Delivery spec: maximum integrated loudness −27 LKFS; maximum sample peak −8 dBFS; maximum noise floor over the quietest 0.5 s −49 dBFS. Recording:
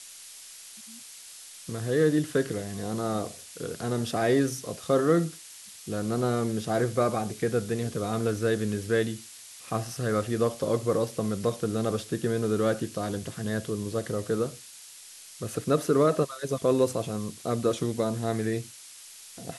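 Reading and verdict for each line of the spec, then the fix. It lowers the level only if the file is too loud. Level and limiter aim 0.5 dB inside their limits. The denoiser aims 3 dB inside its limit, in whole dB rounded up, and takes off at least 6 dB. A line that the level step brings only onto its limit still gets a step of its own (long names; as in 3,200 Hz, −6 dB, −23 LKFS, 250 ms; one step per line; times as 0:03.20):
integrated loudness −28.5 LKFS: in spec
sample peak −11.0 dBFS: in spec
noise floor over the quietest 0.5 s −48 dBFS: out of spec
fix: broadband denoise 6 dB, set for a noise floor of −48 dBFS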